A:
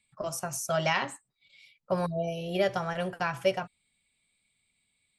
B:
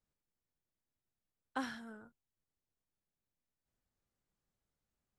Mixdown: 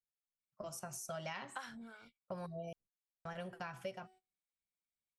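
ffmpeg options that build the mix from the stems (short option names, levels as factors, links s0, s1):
-filter_complex "[0:a]equalizer=f=210:w=7.8:g=8,bandreject=f=373:t=h:w=4,bandreject=f=746:t=h:w=4,bandreject=f=1119:t=h:w=4,bandreject=f=1492:t=h:w=4,bandreject=f=1865:t=h:w=4,bandreject=f=2238:t=h:w=4,bandreject=f=2611:t=h:w=4,bandreject=f=2984:t=h:w=4,bandreject=f=3357:t=h:w=4,bandreject=f=3730:t=h:w=4,bandreject=f=4103:t=h:w=4,bandreject=f=4476:t=h:w=4,bandreject=f=4849:t=h:w=4,bandreject=f=5222:t=h:w=4,bandreject=f=5595:t=h:w=4,bandreject=f=5968:t=h:w=4,bandreject=f=6341:t=h:w=4,bandreject=f=6714:t=h:w=4,bandreject=f=7087:t=h:w=4,bandreject=f=7460:t=h:w=4,bandreject=f=7833:t=h:w=4,bandreject=f=8206:t=h:w=4,bandreject=f=8579:t=h:w=4,bandreject=f=8952:t=h:w=4,bandreject=f=9325:t=h:w=4,bandreject=f=9698:t=h:w=4,bandreject=f=10071:t=h:w=4,adelay=400,volume=0.316,asplit=3[s0][s1][s2];[s0]atrim=end=2.73,asetpts=PTS-STARTPTS,afade=t=out:st=2.726:d=0.004:c=hsin[s3];[s1]atrim=start=2.73:end=3.25,asetpts=PTS-STARTPTS,volume=0[s4];[s2]atrim=start=3.25,asetpts=PTS-STARTPTS,afade=t=in:d=0.004:c=hsin[s5];[s3][s4][s5]concat=n=3:v=0:a=1[s6];[1:a]acrossover=split=580[s7][s8];[s7]aeval=exprs='val(0)*(1-1/2+1/2*cos(2*PI*2.8*n/s))':c=same[s9];[s8]aeval=exprs='val(0)*(1-1/2-1/2*cos(2*PI*2.8*n/s))':c=same[s10];[s9][s10]amix=inputs=2:normalize=0,volume=1.33[s11];[s6][s11]amix=inputs=2:normalize=0,agate=range=0.1:threshold=0.001:ratio=16:detection=peak,acompressor=threshold=0.00794:ratio=3"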